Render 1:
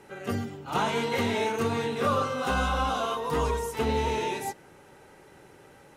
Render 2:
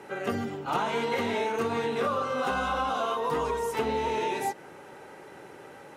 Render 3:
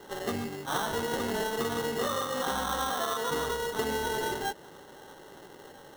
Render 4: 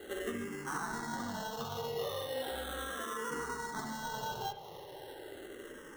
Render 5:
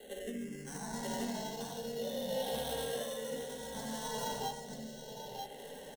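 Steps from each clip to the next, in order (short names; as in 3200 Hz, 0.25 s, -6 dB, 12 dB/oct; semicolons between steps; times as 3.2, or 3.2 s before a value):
HPF 310 Hz 6 dB/oct; high shelf 2900 Hz -8 dB; compressor, threshold -34 dBFS, peak gain reduction 10.5 dB; gain +8.5 dB
sample-rate reducer 2400 Hz, jitter 0%; gain -2.5 dB
compressor 4:1, threshold -37 dBFS, peak gain reduction 10 dB; reverb, pre-delay 62 ms, DRR 6 dB; endless phaser -0.37 Hz; gain +2.5 dB
echo 0.938 s -3 dB; rotary speaker horn 0.65 Hz; fixed phaser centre 340 Hz, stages 6; gain +3.5 dB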